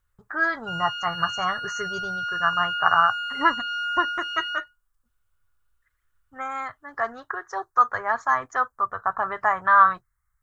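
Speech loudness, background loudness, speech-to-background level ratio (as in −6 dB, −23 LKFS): −24.0 LKFS, −28.5 LKFS, 4.5 dB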